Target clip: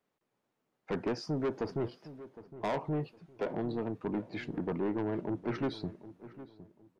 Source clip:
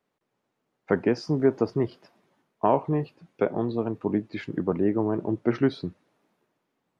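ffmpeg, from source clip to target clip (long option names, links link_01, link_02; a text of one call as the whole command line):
ffmpeg -i in.wav -filter_complex "[0:a]asoftclip=type=tanh:threshold=-23.5dB,asplit=2[link_01][link_02];[link_02]adelay=761,lowpass=frequency=1400:poles=1,volume=-15dB,asplit=2[link_03][link_04];[link_04]adelay=761,lowpass=frequency=1400:poles=1,volume=0.29,asplit=2[link_05][link_06];[link_06]adelay=761,lowpass=frequency=1400:poles=1,volume=0.29[link_07];[link_01][link_03][link_05][link_07]amix=inputs=4:normalize=0,volume=-4dB" out.wav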